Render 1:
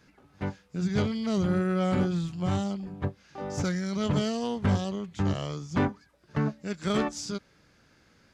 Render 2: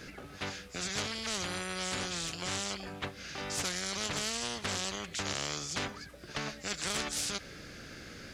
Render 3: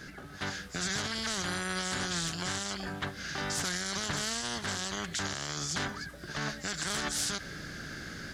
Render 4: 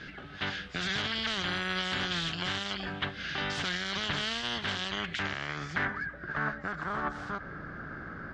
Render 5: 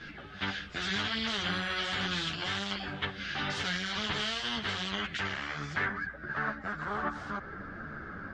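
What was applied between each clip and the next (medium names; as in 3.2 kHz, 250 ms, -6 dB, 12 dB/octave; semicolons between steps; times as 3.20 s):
peaking EQ 940 Hz -11 dB 0.53 oct; spectrum-flattening compressor 4:1; trim -2.5 dB
level rider gain up to 4.5 dB; graphic EQ with 31 bands 160 Hz +5 dB, 500 Hz -6 dB, 1.6 kHz +6 dB, 2.5 kHz -7 dB; peak limiter -23 dBFS, peak gain reduction 8 dB
low-pass sweep 3.1 kHz -> 1.2 kHz, 4.79–6.87 s
three-phase chorus; trim +2.5 dB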